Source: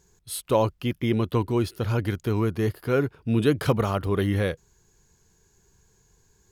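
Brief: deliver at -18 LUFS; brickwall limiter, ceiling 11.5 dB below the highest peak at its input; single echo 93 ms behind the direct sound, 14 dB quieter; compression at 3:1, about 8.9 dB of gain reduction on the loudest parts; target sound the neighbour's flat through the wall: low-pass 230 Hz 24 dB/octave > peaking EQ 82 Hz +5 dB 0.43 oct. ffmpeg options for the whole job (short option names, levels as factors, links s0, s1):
-af "acompressor=threshold=0.0398:ratio=3,alimiter=level_in=1.58:limit=0.0631:level=0:latency=1,volume=0.631,lowpass=f=230:w=0.5412,lowpass=f=230:w=1.3066,equalizer=f=82:t=o:w=0.43:g=5,aecho=1:1:93:0.2,volume=11.9"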